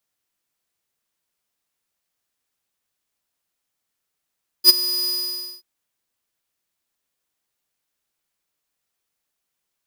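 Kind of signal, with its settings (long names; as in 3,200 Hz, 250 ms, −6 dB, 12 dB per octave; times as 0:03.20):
note with an ADSR envelope square 4,940 Hz, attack 54 ms, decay 21 ms, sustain −16 dB, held 0.43 s, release 550 ms −7 dBFS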